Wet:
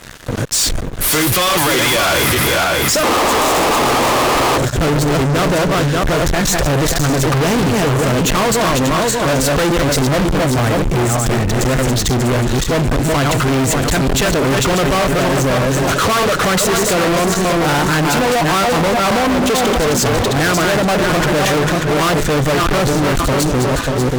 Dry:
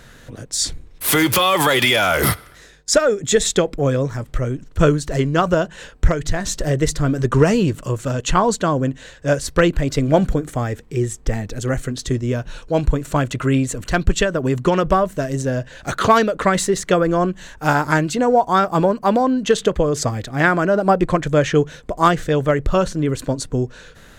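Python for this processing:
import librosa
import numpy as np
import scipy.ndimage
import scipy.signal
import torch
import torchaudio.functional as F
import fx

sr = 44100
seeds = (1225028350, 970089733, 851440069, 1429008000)

y = fx.reverse_delay_fb(x, sr, ms=294, feedback_pct=50, wet_db=-5.0)
y = fx.spec_paint(y, sr, seeds[0], shape='noise', start_s=3.03, length_s=1.55, low_hz=230.0, high_hz=1300.0, level_db=-7.0)
y = fx.fuzz(y, sr, gain_db=33.0, gate_db=-41.0)
y = fx.quant_float(y, sr, bits=4)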